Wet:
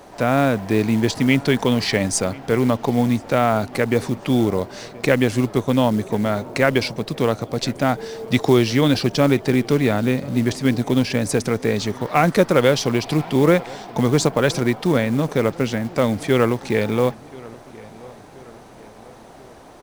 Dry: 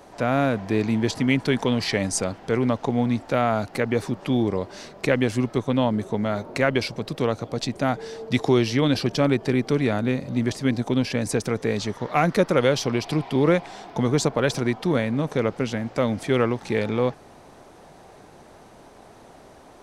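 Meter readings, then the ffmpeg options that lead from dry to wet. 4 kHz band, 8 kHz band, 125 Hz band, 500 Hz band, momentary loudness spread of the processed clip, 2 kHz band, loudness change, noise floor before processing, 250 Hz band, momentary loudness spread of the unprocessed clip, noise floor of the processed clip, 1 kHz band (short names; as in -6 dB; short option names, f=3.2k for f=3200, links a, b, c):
+4.0 dB, +4.5 dB, +4.0 dB, +4.0 dB, 6 LU, +4.0 dB, +4.0 dB, -48 dBFS, +4.0 dB, 6 LU, -43 dBFS, +4.0 dB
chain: -filter_complex "[0:a]acrusher=bits=6:mode=log:mix=0:aa=0.000001,asplit=2[a][b];[b]adelay=1030,lowpass=f=3.6k:p=1,volume=-22dB,asplit=2[c][d];[d]adelay=1030,lowpass=f=3.6k:p=1,volume=0.49,asplit=2[e][f];[f]adelay=1030,lowpass=f=3.6k:p=1,volume=0.49[g];[a][c][e][g]amix=inputs=4:normalize=0,volume=4dB"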